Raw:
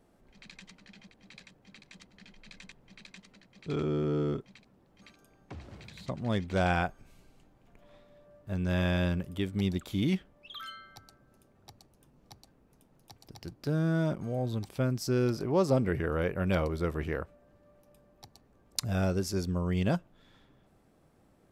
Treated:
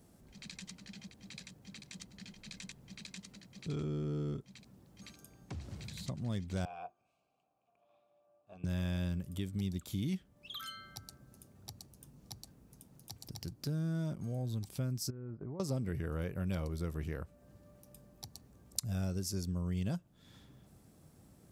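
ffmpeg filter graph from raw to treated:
-filter_complex "[0:a]asettb=1/sr,asplit=3[a][b][c];[a]atrim=end=6.654[d];[b]atrim=start=6.65:end=8.64,asetpts=PTS-STARTPTS,afade=t=in:d=0.004:c=qsin,afade=t=out:st=1.986:d=0.004:c=qsin,asplit=3[e][f][g];[e]bandpass=f=730:t=q:w=8,volume=0dB[h];[f]bandpass=f=1.09k:t=q:w=8,volume=-6dB[i];[g]bandpass=f=2.44k:t=q:w=8,volume=-9dB[j];[h][i][j]amix=inputs=3:normalize=0,bandreject=f=50:t=h:w=6,bandreject=f=100:t=h:w=6,bandreject=f=150:t=h:w=6,bandreject=f=200:t=h:w=6,bandreject=f=250:t=h:w=6,bandreject=f=300:t=h:w=6,bandreject=f=350:t=h:w=6,bandreject=f=400:t=h:w=6,tremolo=f=250:d=0.333[k];[c]atrim=start=8.636[l];[d][k]acrossfade=d=0.004:c1=hsin:c2=qsin[m];[m][l]acrossfade=d=0.004:c1=qsin:c2=hsin,asettb=1/sr,asplit=3[n][o][p];[n]atrim=end=15.104[q];[o]atrim=start=15.1:end=15.6,asetpts=PTS-STARTPTS,afade=t=in:d=0.004:c=qsin,afade=t=out:st=0.496:d=0.004:c=qsin,lowpass=f=1.6k:w=0.5412,lowpass=f=1.6k:w=1.3066,agate=range=-33dB:threshold=-30dB:ratio=3:release=100:detection=peak,acompressor=threshold=-38dB:ratio=16:attack=3.2:release=140:knee=1:detection=peak[r];[p]atrim=start=15.596[s];[q][r]acrossfade=d=0.004:c1=hsin:c2=qsin[t];[t][s]acrossfade=d=0.004:c1=qsin:c2=hsin,highpass=59,bass=f=250:g=10,treble=f=4k:g=13,acompressor=threshold=-41dB:ratio=2,volume=-2dB"

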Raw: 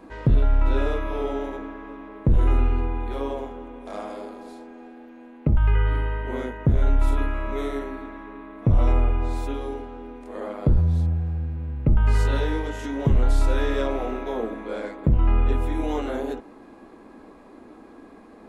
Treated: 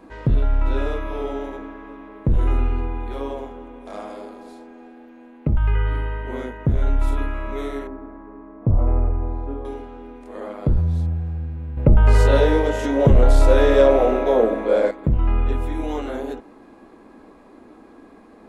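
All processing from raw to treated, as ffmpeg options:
-filter_complex "[0:a]asettb=1/sr,asplit=3[a][b][c];[a]atrim=end=7.874[d];[b]atrim=start=7.87:end=9.65,asetpts=PTS-STARTPTS,afade=t=in:d=0.004:c=qsin,afade=t=out:st=1.776:d=0.004:c=qsin,lowpass=1k,equalizer=f=87:w=4.7:g=4[e];[c]atrim=start=9.646[f];[d][e]acrossfade=d=0.004:c1=hsin:c2=qsin[g];[g][f]acrossfade=d=0.004:c1=qsin:c2=hsin,asettb=1/sr,asplit=3[h][i][j];[h]atrim=end=11.774[k];[i]atrim=start=11.77:end=14.91,asetpts=PTS-STARTPTS,afade=t=in:d=0.004:c=qsin,afade=t=out:st=3.136:d=0.004:c=qsin,equalizer=f=560:t=o:w=0.7:g=10.5,acontrast=57[l];[j]atrim=start=14.906[m];[k][l]acrossfade=d=0.004:c1=hsin:c2=qsin[n];[n][m]acrossfade=d=0.004:c1=qsin:c2=hsin"

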